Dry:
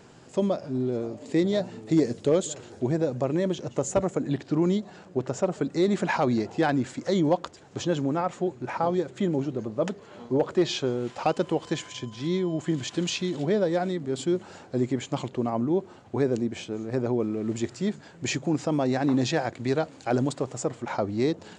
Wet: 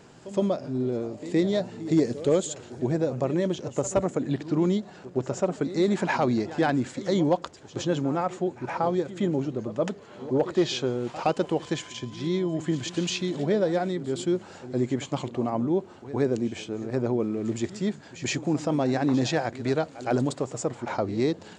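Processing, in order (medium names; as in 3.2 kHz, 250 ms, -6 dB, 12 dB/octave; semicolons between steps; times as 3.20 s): reverse echo 116 ms -15.5 dB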